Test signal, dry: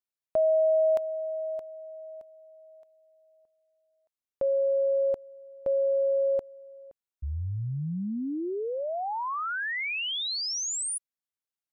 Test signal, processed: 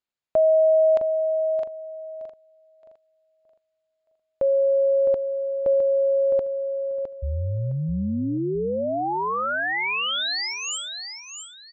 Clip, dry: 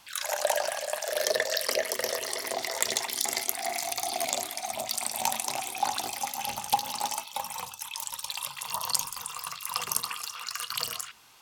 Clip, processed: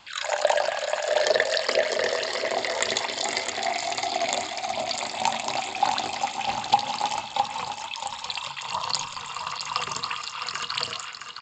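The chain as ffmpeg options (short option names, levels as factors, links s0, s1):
-af "equalizer=f=5900:t=o:w=0.26:g=-14,aecho=1:1:661|1322|1983:0.422|0.105|0.0264,aresample=16000,aresample=44100,volume=1.88"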